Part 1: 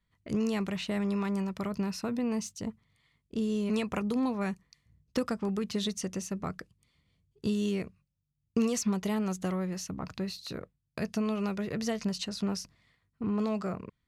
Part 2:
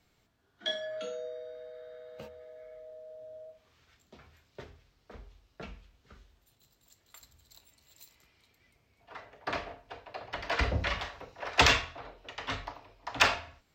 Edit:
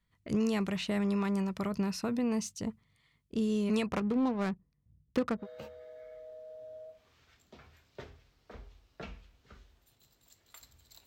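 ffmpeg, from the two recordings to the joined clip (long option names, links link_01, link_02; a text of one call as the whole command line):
ffmpeg -i cue0.wav -i cue1.wav -filter_complex "[0:a]asettb=1/sr,asplit=3[link_01][link_02][link_03];[link_01]atrim=end=3.864[link_04];[link_02]atrim=start=3.86:end=5.47,asetpts=PTS-STARTPTS,afade=type=in:duration=0.004:curve=qsin,afade=type=out:start_time=1.606:duration=0.004:curve=qsin,adynamicsmooth=sensitivity=6.5:basefreq=510[link_05];[link_03]atrim=start=5.466[link_06];[link_04][link_05]acrossfade=duration=0.004:curve1=hsin:curve2=qsin[link_07];[link_07][link_06]acrossfade=duration=0.004:curve1=qsin:curve2=hsin,apad=whole_dur=11.06,atrim=end=11.06,atrim=end=5.47,asetpts=PTS-STARTPTS[link_08];[1:a]atrim=start=1.97:end=7.66,asetpts=PTS-STARTPTS[link_09];[link_08][link_09]acrossfade=duration=0.1:curve1=tri:curve2=tri" out.wav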